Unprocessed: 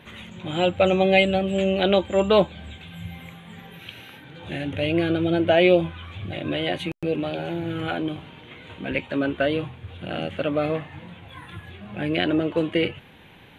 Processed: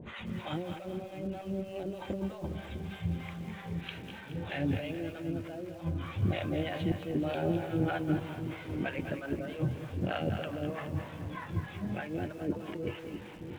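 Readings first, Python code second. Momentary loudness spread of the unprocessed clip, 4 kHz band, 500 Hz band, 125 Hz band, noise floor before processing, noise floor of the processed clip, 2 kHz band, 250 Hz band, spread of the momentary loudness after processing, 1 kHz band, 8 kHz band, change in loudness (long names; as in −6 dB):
22 LU, −16.0 dB, −15.0 dB, −4.0 dB, −49 dBFS, −46 dBFS, −13.0 dB, −9.5 dB, 9 LU, −12.0 dB, can't be measured, −13.0 dB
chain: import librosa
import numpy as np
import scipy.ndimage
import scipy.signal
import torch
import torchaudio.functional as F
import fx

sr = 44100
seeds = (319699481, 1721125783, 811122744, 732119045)

p1 = fx.lowpass(x, sr, hz=1100.0, slope=6)
p2 = fx.over_compress(p1, sr, threshold_db=-31.0, ratio=-1.0)
p3 = fx.harmonic_tremolo(p2, sr, hz=3.2, depth_pct=100, crossover_hz=630.0)
p4 = p3 + fx.echo_split(p3, sr, split_hz=410.0, low_ms=652, high_ms=212, feedback_pct=52, wet_db=-9, dry=0)
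y = fx.echo_crushed(p4, sr, ms=195, feedback_pct=35, bits=8, wet_db=-12.0)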